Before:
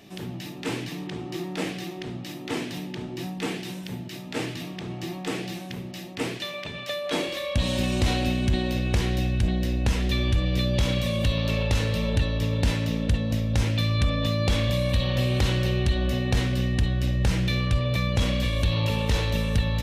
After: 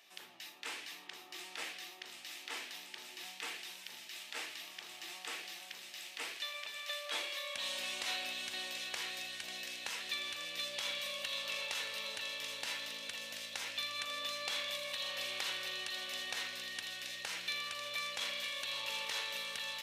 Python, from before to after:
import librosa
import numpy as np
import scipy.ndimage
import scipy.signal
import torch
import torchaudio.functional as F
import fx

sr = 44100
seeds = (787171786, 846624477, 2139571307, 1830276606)

y = scipy.signal.sosfilt(scipy.signal.butter(2, 1100.0, 'highpass', fs=sr, output='sos'), x)
y = fx.echo_wet_highpass(y, sr, ms=733, feedback_pct=74, hz=2700.0, wet_db=-5)
y = y * 10.0 ** (-7.0 / 20.0)